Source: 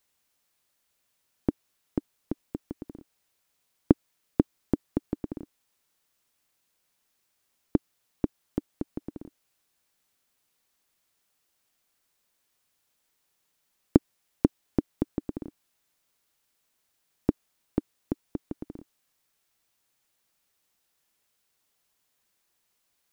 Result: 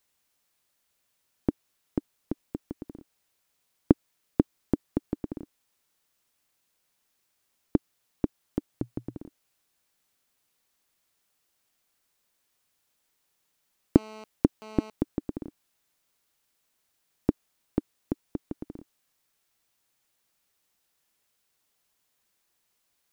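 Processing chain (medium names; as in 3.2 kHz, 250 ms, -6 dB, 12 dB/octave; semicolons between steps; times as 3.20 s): 8.69–9.17 s: peaking EQ 120 Hz +11.5 dB 0.38 oct; 13.96–14.90 s: mobile phone buzz -44 dBFS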